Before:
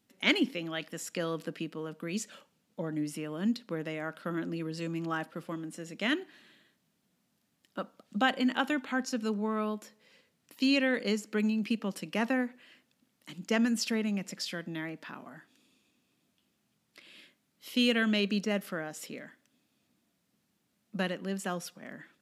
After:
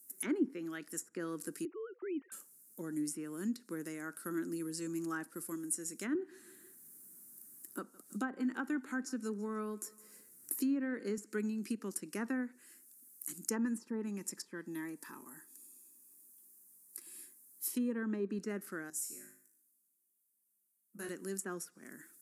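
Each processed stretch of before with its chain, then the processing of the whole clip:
1.65–2.32 s: formants replaced by sine waves + distance through air 180 m
6.15–11.18 s: treble shelf 2.3 kHz -8.5 dB + feedback delay 161 ms, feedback 45%, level -23 dB + three bands compressed up and down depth 40%
13.50–18.39 s: peaking EQ 900 Hz +9 dB 0.37 oct + comb of notches 720 Hz
18.90–21.09 s: feedback comb 52 Hz, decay 0.61 s, mix 90% + three bands expanded up and down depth 40%
whole clip: pre-emphasis filter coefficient 0.9; low-pass that closes with the level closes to 1 kHz, closed at -38.5 dBFS; FFT filter 180 Hz 0 dB, 370 Hz +10 dB, 590 Hz -9 dB, 1.5 kHz 0 dB, 3.2 kHz -19 dB, 9.6 kHz +15 dB; trim +9 dB

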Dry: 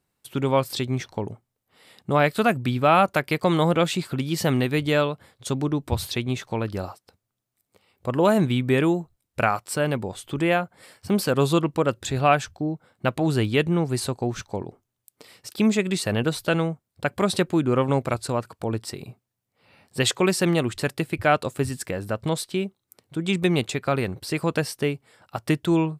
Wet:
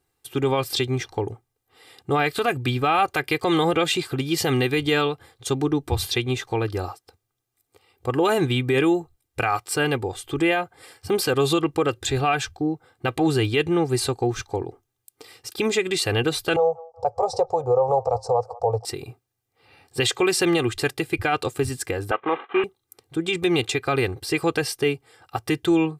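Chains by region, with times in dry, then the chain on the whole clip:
16.56–18.85 s: FFT filter 110 Hz 0 dB, 210 Hz -18 dB, 320 Hz -26 dB, 500 Hz +13 dB, 930 Hz +8 dB, 1.6 kHz -26 dB, 3.3 kHz -29 dB, 5.4 kHz -1 dB, 12 kHz -25 dB + feedback echo behind a band-pass 188 ms, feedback 42%, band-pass 1.1 kHz, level -22 dB
22.11–22.64 s: CVSD coder 16 kbps + high-pass 240 Hz 24 dB/octave + peaking EQ 1.1 kHz +12.5 dB 1.1 oct
whole clip: dynamic bell 2.9 kHz, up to +4 dB, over -36 dBFS, Q 0.95; comb 2.5 ms, depth 76%; peak limiter -12.5 dBFS; trim +1 dB

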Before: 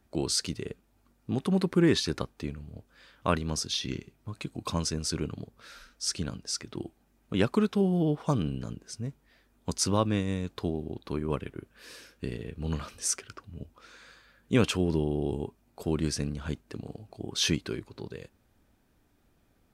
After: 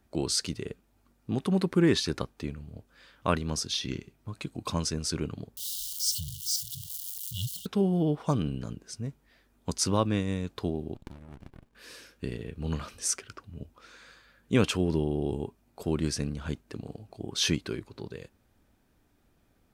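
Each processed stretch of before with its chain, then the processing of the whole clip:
5.57–7.66 s: zero-crossing glitches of -26.5 dBFS + brick-wall FIR band-stop 160–2800 Hz
10.94–11.75 s: tilt EQ +2.5 dB/octave + compression 4:1, threshold -46 dBFS + sliding maximum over 65 samples
whole clip: none

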